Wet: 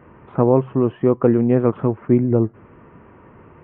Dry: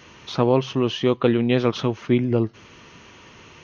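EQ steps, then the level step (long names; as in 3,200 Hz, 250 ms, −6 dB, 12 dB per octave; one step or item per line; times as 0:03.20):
Gaussian smoothing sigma 5.9 samples
+4.0 dB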